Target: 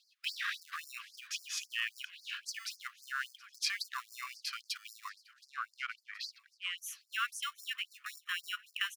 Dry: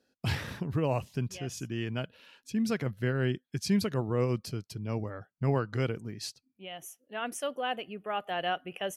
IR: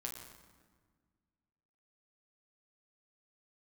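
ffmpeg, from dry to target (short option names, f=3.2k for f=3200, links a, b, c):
-filter_complex "[0:a]acrossover=split=490 4000:gain=0.224 1 0.178[a][b][c];[a][b][c]amix=inputs=3:normalize=0,acompressor=threshold=-48dB:ratio=4,asplit=2[d][e];[e]acrusher=samples=28:mix=1:aa=0.000001,volume=-11.5dB[f];[d][f]amix=inputs=2:normalize=0,asettb=1/sr,asplit=3[g][h][i];[g]atrim=end=5.094[j];[h]atrim=start=5.09:end=6.78,asetpts=PTS-STARTPTS,afade=t=in:d=0.004:c=qsin,afade=t=out:st=1.686:d=0.004:c=qsin,adynamicsmooth=sensitivity=7:basefreq=2.8k[k];[i]atrim=start=6.776[l];[j][k]acrossfade=d=0.004:c1=hsin:c2=qsin[m];[m][l]acrossfade=d=0.004:c1=qsin:c2=hsin,asplit=2[n][o];[o]aecho=0:1:723|1446|2169|2892:0.0794|0.0469|0.0277|0.0163[p];[n][p]amix=inputs=2:normalize=0,afftfilt=real='re*gte(b*sr/1024,990*pow(4500/990,0.5+0.5*sin(2*PI*3.7*pts/sr)))':imag='im*gte(b*sr/1024,990*pow(4500/990,0.5+0.5*sin(2*PI*3.7*pts/sr)))':win_size=1024:overlap=0.75,volume=18dB"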